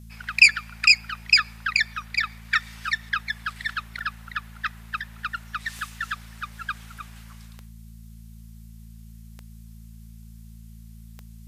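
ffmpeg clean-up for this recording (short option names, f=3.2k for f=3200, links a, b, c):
-af "adeclick=t=4,bandreject=f=55.8:t=h:w=4,bandreject=f=111.6:t=h:w=4,bandreject=f=167.4:t=h:w=4,bandreject=f=223.2:t=h:w=4,agate=range=-21dB:threshold=-36dB"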